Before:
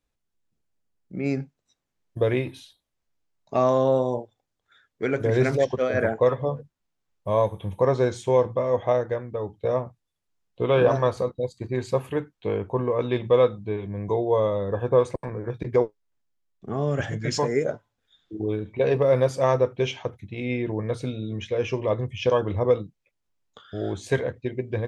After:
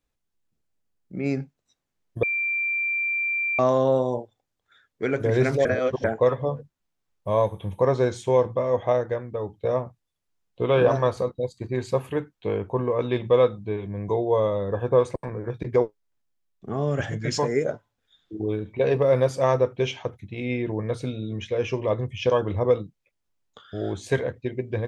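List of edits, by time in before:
2.23–3.59 bleep 2360 Hz -22.5 dBFS
5.65–6.04 reverse

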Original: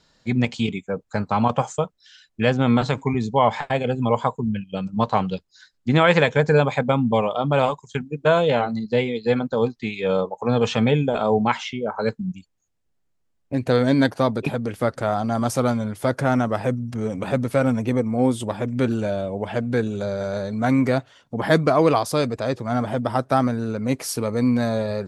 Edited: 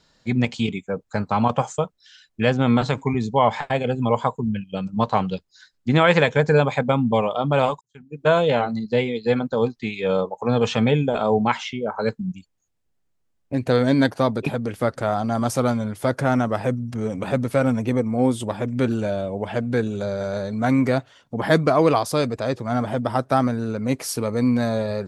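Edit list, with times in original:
7.81–8.28 fade in quadratic

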